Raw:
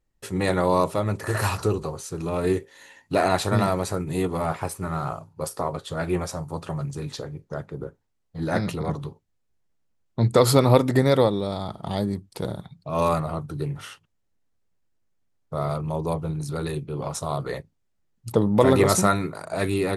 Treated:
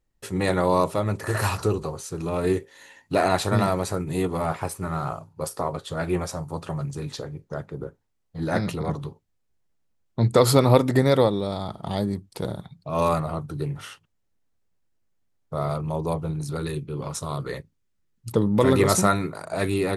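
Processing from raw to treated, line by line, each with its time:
16.57–18.88 bell 710 Hz -8 dB 0.65 oct

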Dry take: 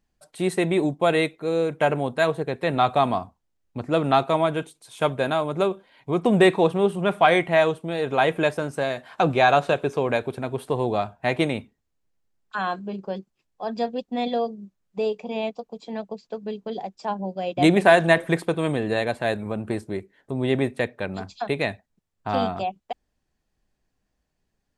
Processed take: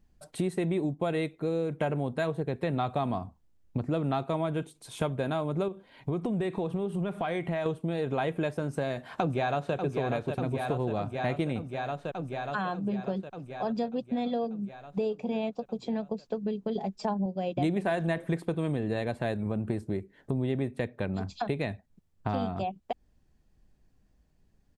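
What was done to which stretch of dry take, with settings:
5.68–7.66 compressor 2:1, threshold -32 dBFS
8.65–9.75 echo throw 0.59 s, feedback 70%, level -8 dB
16.75–17.26 comb 4.7 ms, depth 85%
whole clip: low shelf 350 Hz +11.5 dB; compressor 4:1, threshold -29 dBFS

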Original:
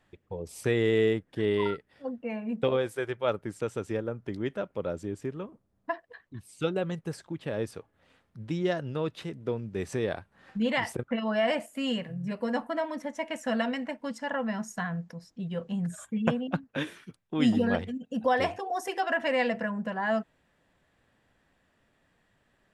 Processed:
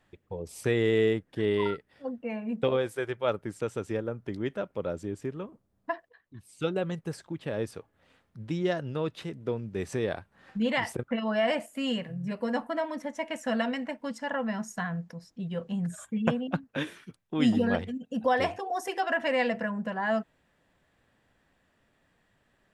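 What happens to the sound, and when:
6.09–6.72 fade in, from -12.5 dB

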